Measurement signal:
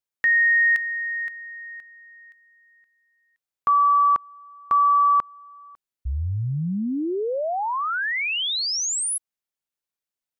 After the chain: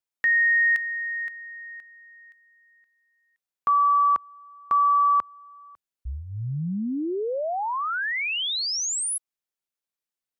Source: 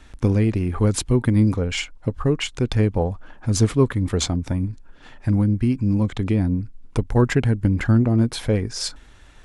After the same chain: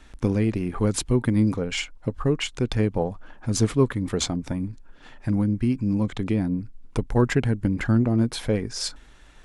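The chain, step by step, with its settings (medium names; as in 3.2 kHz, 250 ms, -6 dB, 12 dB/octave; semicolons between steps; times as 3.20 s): peaking EQ 86 Hz -11.5 dB 0.42 oct; trim -2 dB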